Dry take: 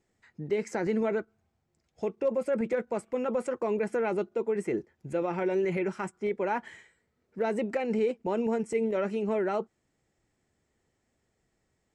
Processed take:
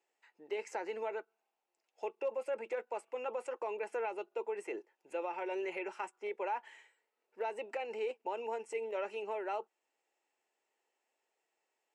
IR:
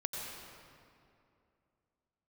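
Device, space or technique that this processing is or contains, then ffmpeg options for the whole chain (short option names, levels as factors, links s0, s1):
laptop speaker: -af "highpass=f=400:w=0.5412,highpass=f=400:w=1.3066,equalizer=f=880:t=o:w=0.34:g=9,equalizer=f=2700:t=o:w=0.25:g=11,alimiter=limit=0.0891:level=0:latency=1:release=308,volume=0.447"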